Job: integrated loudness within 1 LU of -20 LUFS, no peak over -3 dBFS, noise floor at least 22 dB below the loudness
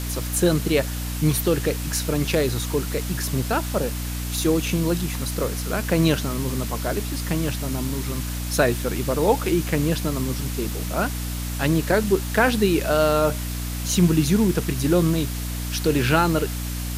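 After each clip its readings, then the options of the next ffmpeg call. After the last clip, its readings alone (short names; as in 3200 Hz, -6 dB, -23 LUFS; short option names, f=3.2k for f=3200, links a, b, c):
hum 60 Hz; harmonics up to 300 Hz; hum level -26 dBFS; noise floor -28 dBFS; noise floor target -45 dBFS; loudness -23.0 LUFS; peak -5.0 dBFS; loudness target -20.0 LUFS
-> -af "bandreject=f=60:t=h:w=6,bandreject=f=120:t=h:w=6,bandreject=f=180:t=h:w=6,bandreject=f=240:t=h:w=6,bandreject=f=300:t=h:w=6"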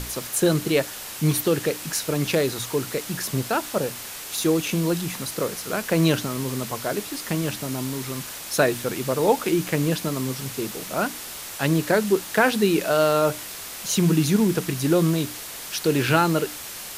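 hum none; noise floor -36 dBFS; noise floor target -46 dBFS
-> -af "afftdn=nr=10:nf=-36"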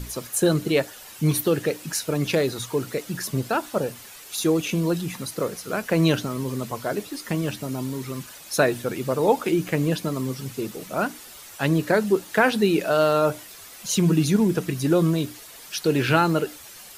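noise floor -44 dBFS; noise floor target -46 dBFS
-> -af "afftdn=nr=6:nf=-44"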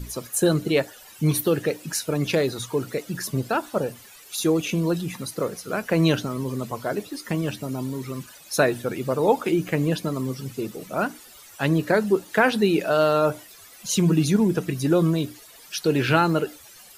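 noise floor -48 dBFS; loudness -24.0 LUFS; peak -5.5 dBFS; loudness target -20.0 LUFS
-> -af "volume=4dB,alimiter=limit=-3dB:level=0:latency=1"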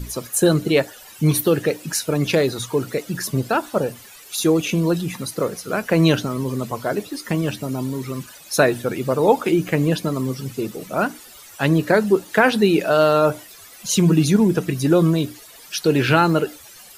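loudness -20.0 LUFS; peak -3.0 dBFS; noise floor -44 dBFS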